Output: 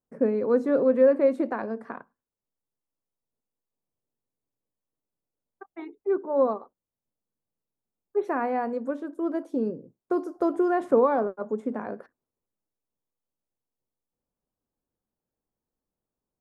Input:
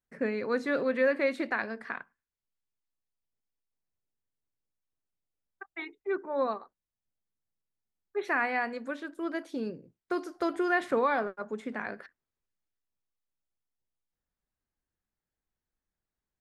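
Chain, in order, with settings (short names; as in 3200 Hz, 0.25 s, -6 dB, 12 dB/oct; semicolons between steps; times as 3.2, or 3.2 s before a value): graphic EQ 125/250/500/1000/2000/4000 Hz +5/+8/+9/+6/-9/-9 dB; gain -3 dB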